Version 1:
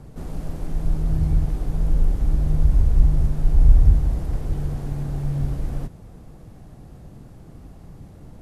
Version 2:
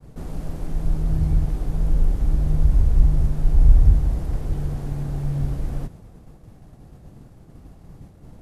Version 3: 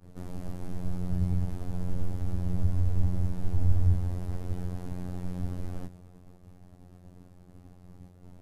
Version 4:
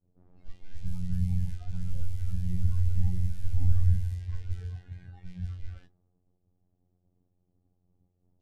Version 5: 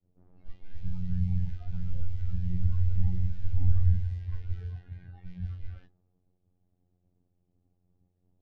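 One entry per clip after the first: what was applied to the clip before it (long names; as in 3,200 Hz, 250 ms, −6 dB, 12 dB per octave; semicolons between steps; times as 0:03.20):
downward expander −38 dBFS
phases set to zero 89.6 Hz; level −4 dB
flutter between parallel walls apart 10 metres, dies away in 0.24 s; low-pass that shuts in the quiet parts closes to 620 Hz, open at −21.5 dBFS; noise reduction from a noise print of the clip's start 21 dB
pitch vibrato 0.37 Hz 15 cents; high-frequency loss of the air 160 metres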